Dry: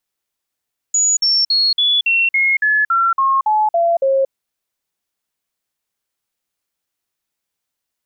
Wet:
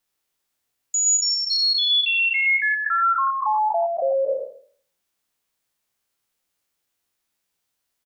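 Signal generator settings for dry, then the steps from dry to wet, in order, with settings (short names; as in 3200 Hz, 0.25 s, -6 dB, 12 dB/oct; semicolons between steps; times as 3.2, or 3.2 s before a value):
stepped sine 6850 Hz down, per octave 3, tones 12, 0.23 s, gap 0.05 s -11.5 dBFS
spectral trails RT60 0.50 s; limiter -17.5 dBFS; on a send: echo 0.12 s -7 dB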